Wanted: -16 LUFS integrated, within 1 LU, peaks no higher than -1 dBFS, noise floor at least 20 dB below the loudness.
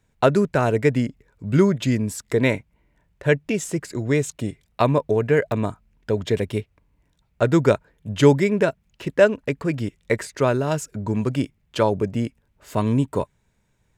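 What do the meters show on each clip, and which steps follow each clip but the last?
dropouts 1; longest dropout 1.3 ms; loudness -22.0 LUFS; peak level -2.0 dBFS; loudness target -16.0 LUFS
-> interpolate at 5.52 s, 1.3 ms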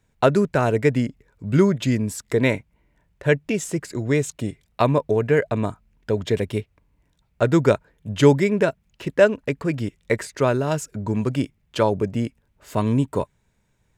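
dropouts 0; loudness -22.0 LUFS; peak level -2.0 dBFS; loudness target -16.0 LUFS
-> trim +6 dB; peak limiter -1 dBFS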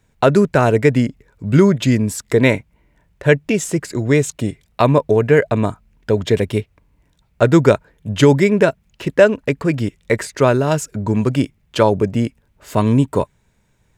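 loudness -16.5 LUFS; peak level -1.0 dBFS; noise floor -61 dBFS

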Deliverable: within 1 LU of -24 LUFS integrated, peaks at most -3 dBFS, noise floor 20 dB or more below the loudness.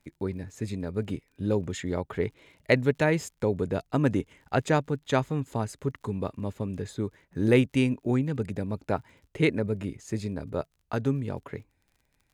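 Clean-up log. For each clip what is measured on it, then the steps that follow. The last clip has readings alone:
tick rate 42 per s; loudness -29.0 LUFS; peak level -6.0 dBFS; loudness target -24.0 LUFS
-> de-click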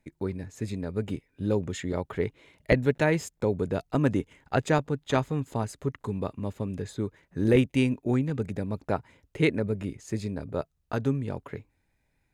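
tick rate 0.89 per s; loudness -29.0 LUFS; peak level -7.0 dBFS; loudness target -24.0 LUFS
-> trim +5 dB; peak limiter -3 dBFS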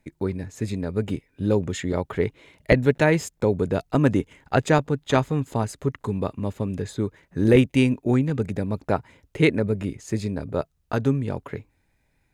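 loudness -24.0 LUFS; peak level -3.0 dBFS; noise floor -69 dBFS

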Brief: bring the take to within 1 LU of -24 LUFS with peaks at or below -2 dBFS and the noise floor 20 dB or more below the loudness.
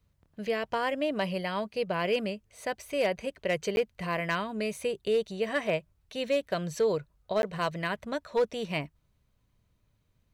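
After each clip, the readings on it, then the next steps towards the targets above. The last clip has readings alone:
clipped samples 0.3%; clipping level -19.5 dBFS; dropouts 2; longest dropout 11 ms; loudness -31.0 LUFS; peak level -19.5 dBFS; loudness target -24.0 LUFS
-> clip repair -19.5 dBFS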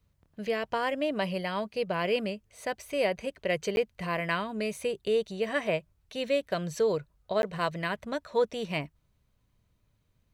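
clipped samples 0.0%; dropouts 2; longest dropout 11 ms
-> interpolate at 3.76/7.42 s, 11 ms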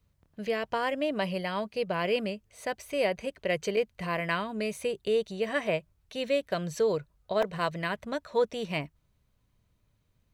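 dropouts 0; loudness -31.0 LUFS; peak level -15.0 dBFS; loudness target -24.0 LUFS
-> trim +7 dB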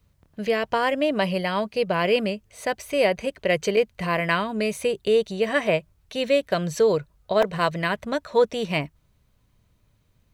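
loudness -24.0 LUFS; peak level -8.0 dBFS; noise floor -65 dBFS

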